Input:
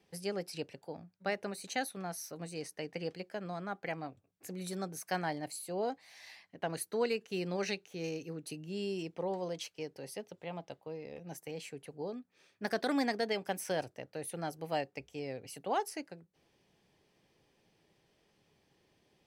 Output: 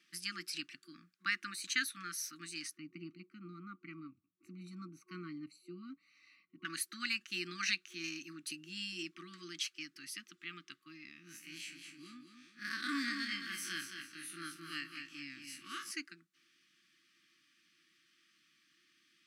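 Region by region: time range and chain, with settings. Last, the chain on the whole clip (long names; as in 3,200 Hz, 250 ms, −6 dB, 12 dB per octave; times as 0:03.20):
0:02.77–0:06.65: moving average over 26 samples + low-shelf EQ 200 Hz +9 dB
0:11.11–0:15.91: spectrum smeared in time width 81 ms + repeating echo 217 ms, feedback 35%, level −7 dB
whole clip: meter weighting curve A; brick-wall band-stop 360–1,100 Hz; low-shelf EQ 140 Hz −12 dB; level +4.5 dB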